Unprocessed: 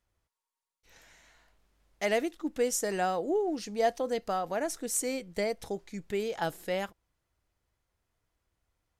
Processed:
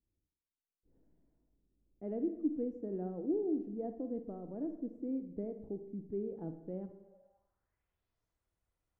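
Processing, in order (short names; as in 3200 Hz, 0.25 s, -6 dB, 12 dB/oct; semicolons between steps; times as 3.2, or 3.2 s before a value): Schroeder reverb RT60 0.9 s, DRR 8.5 dB; low-pass sweep 300 Hz -> 10000 Hz, 6.95–8.44; mismatched tape noise reduction decoder only; gain -7 dB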